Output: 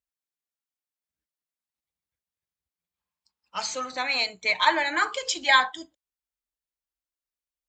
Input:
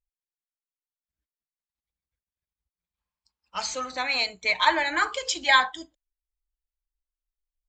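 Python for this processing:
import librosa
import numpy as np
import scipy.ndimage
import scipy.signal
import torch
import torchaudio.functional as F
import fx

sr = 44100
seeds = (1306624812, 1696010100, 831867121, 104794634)

y = scipy.signal.sosfilt(scipy.signal.butter(2, 99.0, 'highpass', fs=sr, output='sos'), x)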